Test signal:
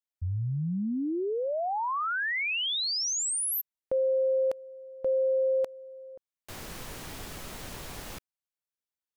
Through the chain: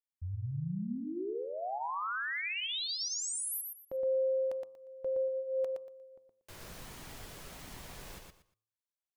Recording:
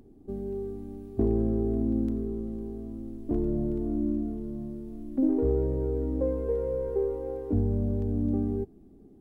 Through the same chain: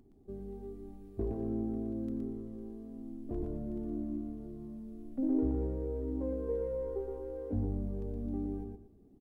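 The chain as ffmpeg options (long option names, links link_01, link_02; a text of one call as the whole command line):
ffmpeg -i in.wav -af "bandreject=frequency=109.5:width_type=h:width=4,bandreject=frequency=219:width_type=h:width=4,bandreject=frequency=328.5:width_type=h:width=4,bandreject=frequency=438:width_type=h:width=4,bandreject=frequency=547.5:width_type=h:width=4,bandreject=frequency=657:width_type=h:width=4,bandreject=frequency=766.5:width_type=h:width=4,bandreject=frequency=876:width_type=h:width=4,bandreject=frequency=985.5:width_type=h:width=4,bandreject=frequency=1095:width_type=h:width=4,bandreject=frequency=1204.5:width_type=h:width=4,flanger=delay=0.9:depth=1.1:regen=-60:speed=1.3:shape=sinusoidal,aecho=1:1:118|236|354:0.631|0.145|0.0334,volume=-4dB" out.wav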